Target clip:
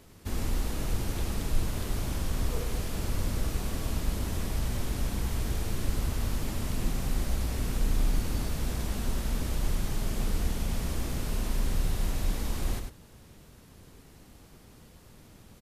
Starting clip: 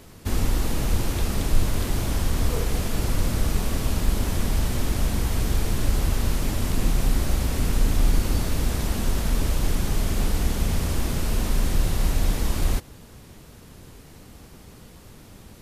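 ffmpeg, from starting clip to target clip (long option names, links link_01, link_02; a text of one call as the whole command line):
ffmpeg -i in.wav -af "aecho=1:1:99:0.473,volume=-8dB" out.wav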